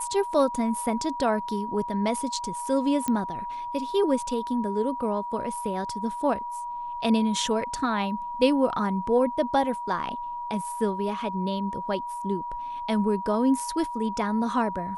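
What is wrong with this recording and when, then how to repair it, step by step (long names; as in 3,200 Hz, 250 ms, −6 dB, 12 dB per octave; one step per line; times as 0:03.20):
whistle 960 Hz −31 dBFS
0:03.08: click −13 dBFS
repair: click removal
notch filter 960 Hz, Q 30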